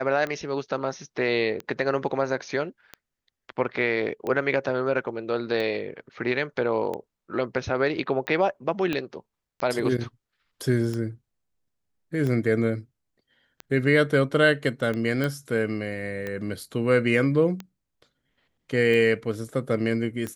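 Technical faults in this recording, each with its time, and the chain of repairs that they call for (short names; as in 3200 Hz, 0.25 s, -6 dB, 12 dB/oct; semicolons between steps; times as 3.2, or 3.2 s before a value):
tick 45 rpm -19 dBFS
8.93 pop -14 dBFS
15.24 pop -15 dBFS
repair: de-click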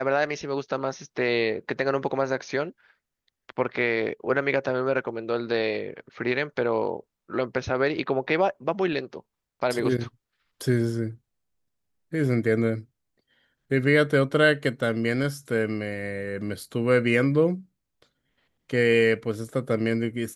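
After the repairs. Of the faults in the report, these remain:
8.93 pop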